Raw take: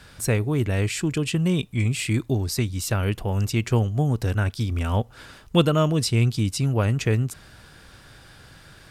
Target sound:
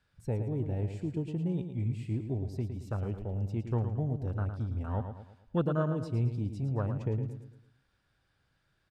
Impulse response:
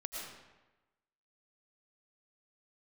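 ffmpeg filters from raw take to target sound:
-filter_complex "[0:a]lowpass=frequency=3600:poles=1,afwtdn=0.0398,equalizer=frequency=320:width_type=o:width=2.9:gain=-2,asplit=2[link_01][link_02];[link_02]aecho=0:1:111|222|333|444|555:0.376|0.158|0.0663|0.0278|0.0117[link_03];[link_01][link_03]amix=inputs=2:normalize=0,volume=-9dB"

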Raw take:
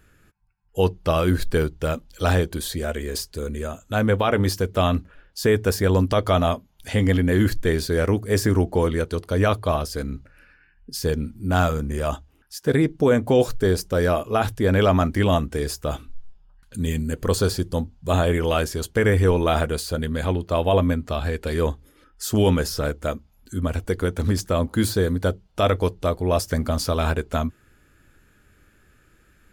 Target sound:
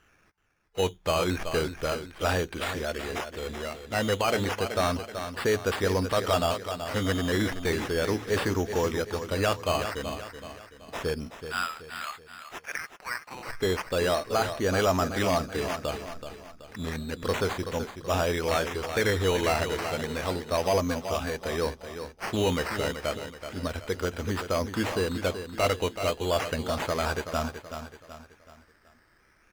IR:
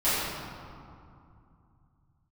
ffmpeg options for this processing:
-filter_complex "[0:a]asettb=1/sr,asplit=3[link_01][link_02][link_03];[link_01]atrim=end=11.304[link_04];[link_02]atrim=start=11.3:end=13.47,asetpts=PTS-STARTPTS,afade=type=in:duration=0.004:curve=qsin,afade=type=out:start_time=2.166:duration=0.004:curve=qsin,highpass=frequency=1200:width=0.5412,highpass=frequency=1200:width=1.3066[link_05];[link_03]atrim=start=13.466[link_06];[link_04][link_05]acrossfade=duration=0.004:curve1=hsin:curve2=qsin[link_07];[link_07][link_06]acrossfade=duration=0.004:curve1=qsin:curve2=hsin,acrusher=samples=10:mix=1:aa=0.000001:lfo=1:lforange=6:lforate=0.32,aecho=1:1:378|756|1134|1512:0.316|0.133|0.0558|0.0234,asplit=2[link_08][link_09];[link_09]highpass=frequency=720:poles=1,volume=10dB,asoftclip=type=tanh:threshold=-6dB[link_10];[link_08][link_10]amix=inputs=2:normalize=0,lowpass=frequency=4900:poles=1,volume=-6dB,volume=-6.5dB"

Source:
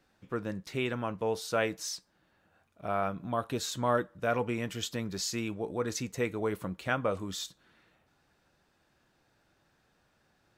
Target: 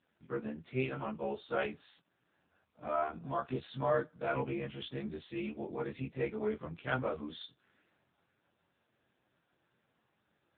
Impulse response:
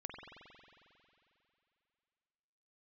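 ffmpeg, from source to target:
-af "afftfilt=real='re':imag='-im':win_size=2048:overlap=0.75,volume=2dB" -ar 8000 -c:a libopencore_amrnb -b:a 5900

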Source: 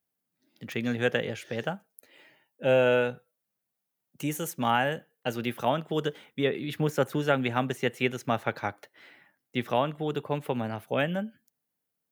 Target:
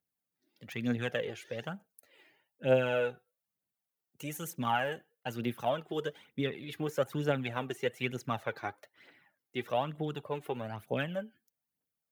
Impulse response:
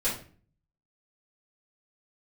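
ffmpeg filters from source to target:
-af "aphaser=in_gain=1:out_gain=1:delay=2.9:decay=0.54:speed=1.1:type=triangular,volume=-7.5dB"

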